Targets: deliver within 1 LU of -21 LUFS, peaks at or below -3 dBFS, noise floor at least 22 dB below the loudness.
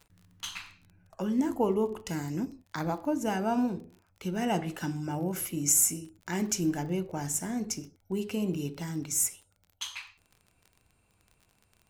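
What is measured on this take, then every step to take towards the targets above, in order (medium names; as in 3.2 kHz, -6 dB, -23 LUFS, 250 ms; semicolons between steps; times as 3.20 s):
tick rate 24 per s; loudness -30.5 LUFS; peak level -11.5 dBFS; loudness target -21.0 LUFS
-> de-click; trim +9.5 dB; peak limiter -3 dBFS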